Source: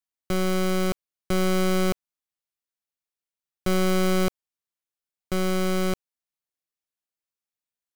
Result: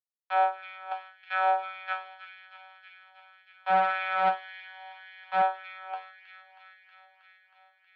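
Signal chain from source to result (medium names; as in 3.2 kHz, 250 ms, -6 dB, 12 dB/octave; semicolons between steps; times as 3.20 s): spectral noise reduction 8 dB; gate with hold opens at -27 dBFS; waveshaping leveller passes 5; chord resonator F#3 fifth, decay 0.34 s; mistuned SSB +200 Hz 280–3400 Hz; feedback echo behind a high-pass 318 ms, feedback 76%, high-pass 2 kHz, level -9 dB; LFO high-pass sine 1.8 Hz 850–1900 Hz; 3.70–5.42 s: loudspeaker Doppler distortion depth 0.1 ms; trim +6 dB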